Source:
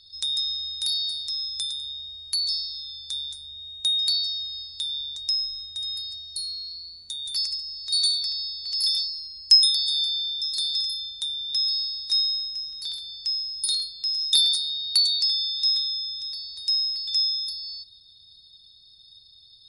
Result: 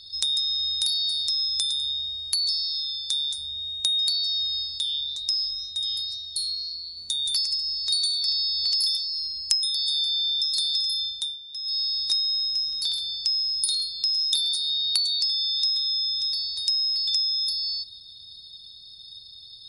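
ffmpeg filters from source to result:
ffmpeg -i in.wav -filter_complex "[0:a]asettb=1/sr,asplit=3[link_01][link_02][link_03];[link_01]atrim=end=2.644[link_04];[link_02]atrim=start=2.64:end=3.38,asetpts=PTS-STARTPTS,afade=type=in:duration=0.004:curve=qsin,afade=type=out:start_time=0.736:duration=0.004:curve=qsin,lowshelf=frequency=420:gain=-8[link_05];[link_03]atrim=start=3.376[link_06];[link_04][link_05]acrossfade=duration=0.004:curve1=hsin:curve2=qsin[link_07];[link_07][link_06]acrossfade=duration=0.004:curve1=qsin:curve2=hsin,asettb=1/sr,asplit=3[link_08][link_09][link_10];[link_08]atrim=end=4.784[link_11];[link_09]atrim=start=4.78:end=6.97,asetpts=PTS-STARTPTS,afade=type=in:duration=0.004:curve=qsin,afade=type=out:start_time=2.186:duration=0.004:curve=qsin,flanger=delay=4.3:depth=6:regen=-63:speed=2:shape=sinusoidal[link_12];[link_10]atrim=start=6.966[link_13];[link_11][link_12]acrossfade=duration=0.004:curve1=hsin:curve2=qsin[link_14];[link_14][link_13]acrossfade=duration=0.004:curve1=qsin:curve2=hsin,asettb=1/sr,asplit=3[link_15][link_16][link_17];[link_15]atrim=end=8.284[link_18];[link_16]atrim=start=8.28:end=8.97,asetpts=PTS-STARTPTS,afade=type=in:duration=0.004:curve=qsin,afade=type=out:start_time=0.686:duration=0.004:curve=qsin,acontrast=37[link_19];[link_17]atrim=start=8.966[link_20];[link_18][link_19]acrossfade=duration=0.004:curve1=hsin:curve2=qsin[link_21];[link_21][link_20]acrossfade=duration=0.004:curve1=qsin:curve2=hsin,asettb=1/sr,asplit=3[link_22][link_23][link_24];[link_22]atrim=end=12.804[link_25];[link_23]atrim=start=12.8:end=15.2,asetpts=PTS-STARTPTS,afade=type=in:duration=0.004:curve=qsin,afade=type=out:start_time=2.396:duration=0.004:curve=qsin,bandreject=frequency=1900:width=12[link_26];[link_24]atrim=start=15.196[link_27];[link_25][link_26]acrossfade=duration=0.004:curve1=hsin:curve2=qsin[link_28];[link_28][link_27]acrossfade=duration=0.004:curve1=qsin:curve2=hsin,asplit=3[link_29][link_30][link_31];[link_29]atrim=end=11.39,asetpts=PTS-STARTPTS,afade=type=out:start_time=11:duration=0.39:silence=0.133352[link_32];[link_30]atrim=start=11.39:end=11.63,asetpts=PTS-STARTPTS,volume=-17.5dB[link_33];[link_31]atrim=start=11.63,asetpts=PTS-STARTPTS,afade=type=in:duration=0.39:silence=0.133352[link_34];[link_32][link_33][link_34]concat=n=3:v=0:a=1,equalizer=frequency=1700:width=1.1:gain=-3.5,acompressor=threshold=-30dB:ratio=8,lowshelf=frequency=110:gain=-4.5,volume=8dB" out.wav

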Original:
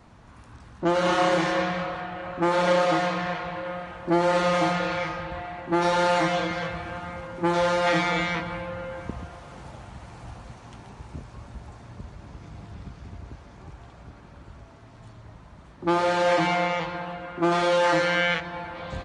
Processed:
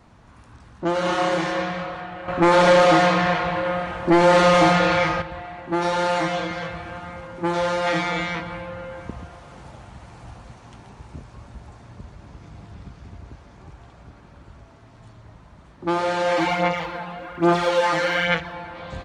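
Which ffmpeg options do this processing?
ffmpeg -i in.wav -filter_complex "[0:a]asettb=1/sr,asplit=3[link_01][link_02][link_03];[link_01]atrim=end=2.284[link_04];[link_02]atrim=start=2.28:end=5.22,asetpts=PTS-STARTPTS,afade=type=in:duration=0.004:curve=qsin,afade=type=out:start_time=2.936:duration=0.004:curve=qsin,aeval=exprs='0.355*sin(PI/2*1.78*val(0)/0.355)':channel_layout=same[link_05];[link_03]atrim=start=5.216[link_06];[link_04][link_05]acrossfade=duration=0.004:curve1=hsin:curve2=qsin[link_07];[link_07][link_06]acrossfade=duration=0.004:curve1=qsin:curve2=hsin,asplit=3[link_08][link_09][link_10];[link_08]afade=type=out:start_time=16.35:duration=0.02[link_11];[link_09]aphaser=in_gain=1:out_gain=1:delay=4.9:decay=0.52:speed=1.2:type=sinusoidal,afade=type=in:start_time=16.35:duration=0.02,afade=type=out:start_time=18.52:duration=0.02[link_12];[link_10]afade=type=in:start_time=18.52:duration=0.02[link_13];[link_11][link_12][link_13]amix=inputs=3:normalize=0" out.wav

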